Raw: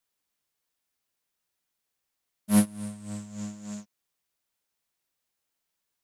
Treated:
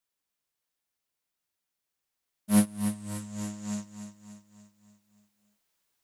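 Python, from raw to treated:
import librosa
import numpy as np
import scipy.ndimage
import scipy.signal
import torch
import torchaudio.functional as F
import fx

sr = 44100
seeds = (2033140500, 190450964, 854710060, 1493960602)

p1 = fx.rider(x, sr, range_db=4, speed_s=2.0)
y = p1 + fx.echo_feedback(p1, sr, ms=290, feedback_pct=51, wet_db=-9.5, dry=0)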